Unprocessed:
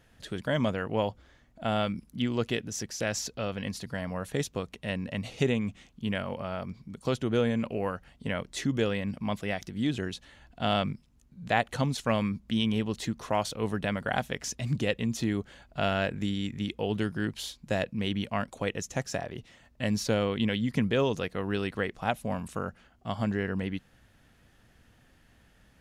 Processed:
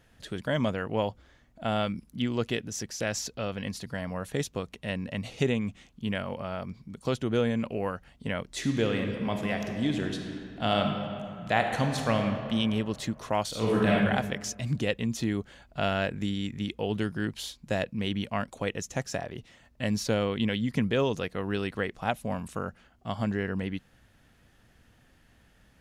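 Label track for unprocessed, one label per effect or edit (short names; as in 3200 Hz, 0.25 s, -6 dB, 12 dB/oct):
8.460000	12.210000	reverb throw, RT60 2.5 s, DRR 3.5 dB
13.490000	13.950000	reverb throw, RT60 1.3 s, DRR -6 dB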